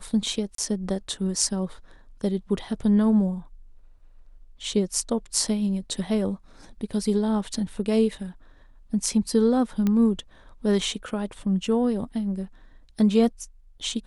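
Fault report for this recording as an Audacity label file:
0.550000	0.580000	gap 33 ms
9.870000	9.870000	pop -13 dBFS

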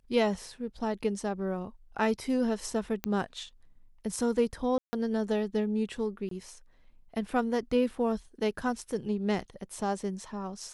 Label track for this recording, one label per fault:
3.040000	3.040000	pop -15 dBFS
4.780000	4.930000	gap 0.15 s
6.290000	6.310000	gap 23 ms

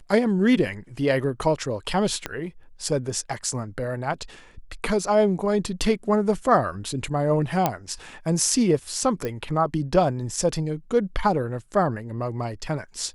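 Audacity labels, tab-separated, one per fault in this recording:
2.260000	2.260000	pop -12 dBFS
7.660000	7.660000	pop -6 dBFS
9.250000	9.250000	pop -16 dBFS

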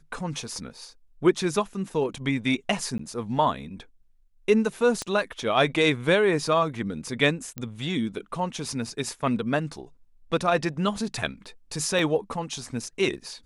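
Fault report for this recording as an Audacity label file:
0.770000	0.770000	gap 2.1 ms
2.980000	2.990000	gap 14 ms
5.020000	5.020000	pop -16 dBFS
7.580000	7.580000	pop -18 dBFS
11.990000	11.990000	gap 2.3 ms

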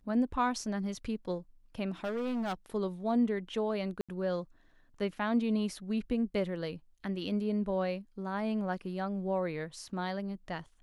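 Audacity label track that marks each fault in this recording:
2.040000	2.540000	clipped -30.5 dBFS
4.010000	4.090000	gap 76 ms

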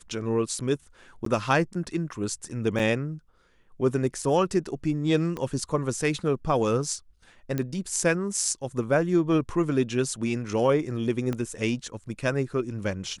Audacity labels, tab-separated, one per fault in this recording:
1.250000	1.260000	gap 13 ms
2.790000	2.800000	gap 5.1 ms
5.370000	5.370000	pop -19 dBFS
7.580000	7.580000	pop -15 dBFS
11.330000	11.330000	pop -17 dBFS

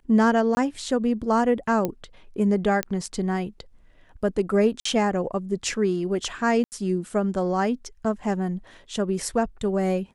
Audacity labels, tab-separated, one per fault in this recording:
0.550000	0.570000	gap 20 ms
1.850000	1.850000	pop -12 dBFS
2.830000	2.830000	pop -10 dBFS
4.800000	4.850000	gap 54 ms
6.640000	6.720000	gap 79 ms

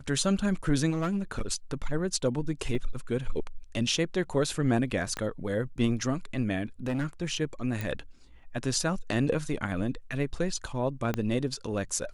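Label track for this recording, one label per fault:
0.900000	1.420000	clipped -24.5 dBFS
2.750000	2.750000	gap 2.3 ms
5.170000	5.170000	pop -18 dBFS
6.860000	7.060000	clipped -25.5 dBFS
7.810000	7.810000	pop
11.140000	11.140000	pop -15 dBFS

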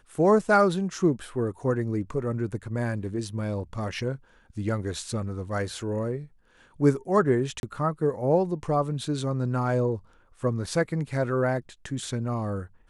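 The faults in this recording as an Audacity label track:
7.600000	7.630000	gap 31 ms

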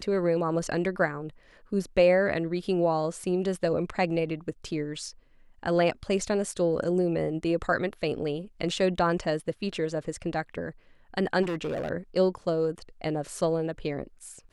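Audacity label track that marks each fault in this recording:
11.420000	11.900000	clipped -27 dBFS

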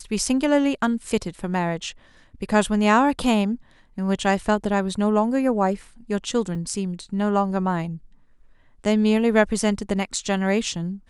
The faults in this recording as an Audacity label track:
6.550000	6.550000	gap 3.5 ms

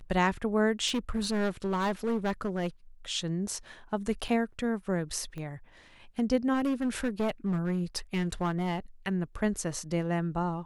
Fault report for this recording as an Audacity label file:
0.870000	2.670000	clipped -25 dBFS
4.280000	4.280000	gap 4.6 ms
5.380000	5.380000	pop -28 dBFS
6.530000	8.780000	clipped -24.5 dBFS

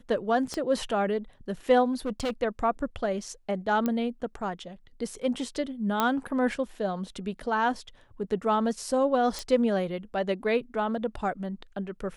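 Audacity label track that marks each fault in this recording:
0.540000	0.540000	pop -19 dBFS
1.920000	2.310000	clipped -25.5 dBFS
3.860000	3.860000	pop -15 dBFS
6.000000	6.000000	pop -10 dBFS
9.390000	9.390000	pop

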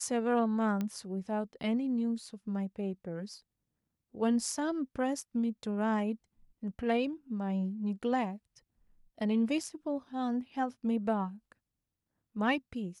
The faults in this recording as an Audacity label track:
0.810000	0.810000	pop -22 dBFS

